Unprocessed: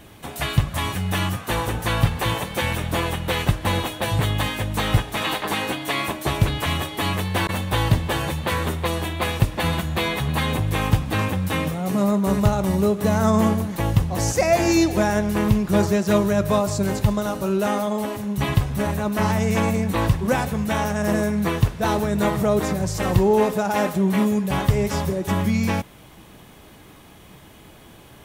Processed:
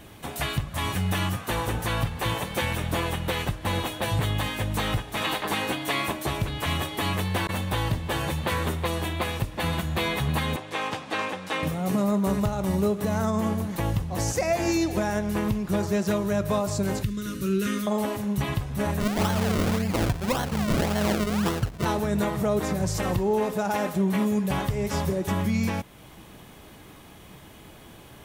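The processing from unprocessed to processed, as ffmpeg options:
-filter_complex "[0:a]asettb=1/sr,asplit=3[a][b][c];[a]atrim=end=10.564[d];[b]atrim=start=10.56:end=11.63,asetpts=PTS-STARTPTS,afade=t=in:d=0.004:c=qsin,afade=t=out:st=1.066:d=0.004:c=qsin,highpass=400,lowpass=6.6k[e];[c]atrim=start=11.626[f];[d][e]acrossfade=d=0.004:c1=hsin:c2=qsin[g];[g][f]acrossfade=d=0.004:c1=qsin:c2=hsin,asettb=1/sr,asplit=3[h][i][j];[h]atrim=end=17.034[k];[i]atrim=start=17.03:end=17.87,asetpts=PTS-STARTPTS,afade=t=in:d=0.004:c=qsin,afade=t=out:st=0.836:d=0.004:c=qsin,asuperstop=centerf=750:order=4:qfactor=0.67[l];[j]atrim=start=17.866[m];[k][l]acrossfade=d=0.004:c1=hsin:c2=qsin[n];[n][m]acrossfade=d=0.004:c1=qsin:c2=hsin,asplit=3[o][p][q];[o]afade=t=out:st=18.99:d=0.02[r];[p]acrusher=samples=36:mix=1:aa=0.000001:lfo=1:lforange=36:lforate=1.8,afade=t=in:st=18.99:d=0.02,afade=t=out:st=21.84:d=0.02[s];[q]afade=t=in:st=21.84:d=0.02[t];[r][s][t]amix=inputs=3:normalize=0,alimiter=limit=-14.5dB:level=0:latency=1:release=379,volume=-1dB"

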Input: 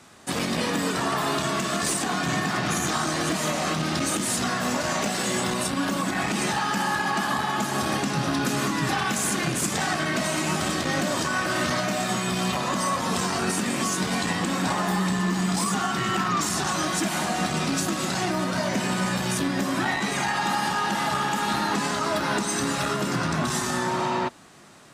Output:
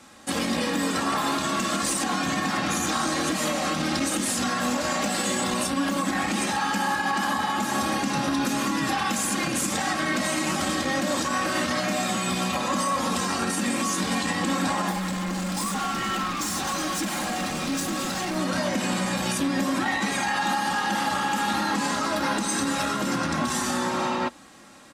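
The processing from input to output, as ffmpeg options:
-filter_complex "[0:a]asettb=1/sr,asplit=3[a][b][c];[a]atrim=end=14.914[d];[b]atrim=start=14.91:end=18.36,asetpts=PTS-STARTPTS,afade=t=in:d=0.004:c=qsin,afade=t=out:st=3.446:d=0.004:c=qsin,asoftclip=type=hard:threshold=-26.5dB[e];[c]atrim=start=18.356[f];[d][e]acrossfade=d=0.004:c1=hsin:c2=qsin[g];[g][f]acrossfade=d=0.004:c1=qsin:c2=hsin,aecho=1:1:3.7:0.56,alimiter=limit=-16dB:level=0:latency=1:release=67"

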